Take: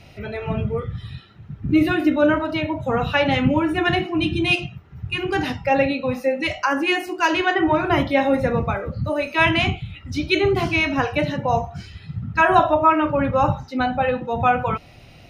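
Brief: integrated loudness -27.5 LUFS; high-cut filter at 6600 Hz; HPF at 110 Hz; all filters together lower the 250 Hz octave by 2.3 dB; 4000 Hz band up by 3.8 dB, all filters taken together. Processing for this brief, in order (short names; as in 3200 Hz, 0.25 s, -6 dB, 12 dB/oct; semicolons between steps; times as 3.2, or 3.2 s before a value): HPF 110 Hz; LPF 6600 Hz; bell 250 Hz -3 dB; bell 4000 Hz +6 dB; gain -7 dB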